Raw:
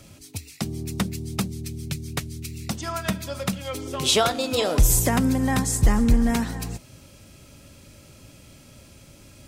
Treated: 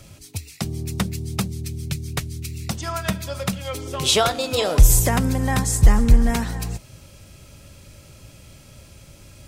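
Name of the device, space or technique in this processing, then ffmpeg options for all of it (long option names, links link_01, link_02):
low shelf boost with a cut just above: -af "lowshelf=frequency=110:gain=5,equalizer=frequency=260:width_type=o:width=0.67:gain=-6,volume=2dB"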